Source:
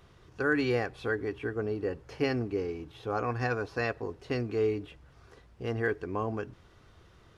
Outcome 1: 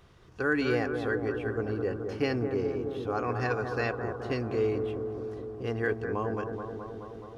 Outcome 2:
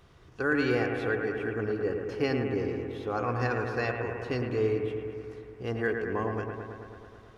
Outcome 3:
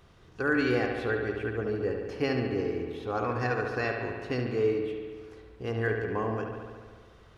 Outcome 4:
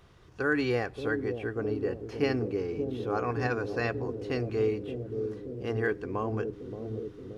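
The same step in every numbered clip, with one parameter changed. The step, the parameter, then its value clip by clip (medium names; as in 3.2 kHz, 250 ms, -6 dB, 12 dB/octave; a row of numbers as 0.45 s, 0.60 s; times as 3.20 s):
bucket-brigade echo, time: 213 ms, 109 ms, 71 ms, 576 ms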